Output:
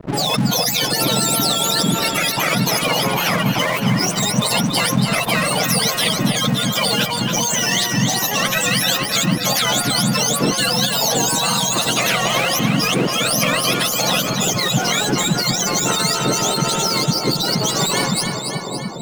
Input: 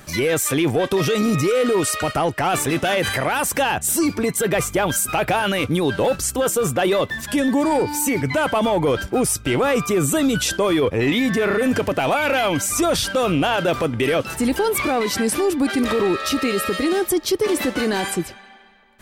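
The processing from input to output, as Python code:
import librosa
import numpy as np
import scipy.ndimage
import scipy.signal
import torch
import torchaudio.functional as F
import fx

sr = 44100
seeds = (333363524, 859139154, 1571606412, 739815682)

p1 = fx.octave_mirror(x, sr, pivot_hz=1300.0)
p2 = fx.spec_gate(p1, sr, threshold_db=-15, keep='strong')
p3 = np.sign(p2) * np.maximum(np.abs(p2) - 10.0 ** (-41.5 / 20.0), 0.0)
p4 = p3 + fx.echo_split(p3, sr, split_hz=850.0, low_ms=734, high_ms=282, feedback_pct=52, wet_db=-11.0, dry=0)
p5 = fx.spectral_comp(p4, sr, ratio=2.0)
y = p5 * 10.0 ** (-2.0 / 20.0)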